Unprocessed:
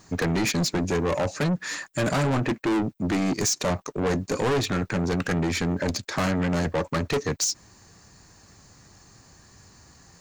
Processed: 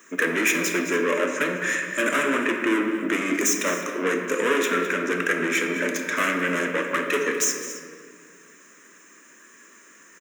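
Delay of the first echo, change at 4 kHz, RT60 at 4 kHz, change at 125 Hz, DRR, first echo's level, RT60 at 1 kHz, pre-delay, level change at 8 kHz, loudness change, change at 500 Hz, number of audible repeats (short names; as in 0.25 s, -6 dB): 0.21 s, -1.0 dB, 1.2 s, -14.0 dB, 2.0 dB, -14.0 dB, 1.9 s, 8 ms, +2.5 dB, +2.5 dB, +2.0 dB, 2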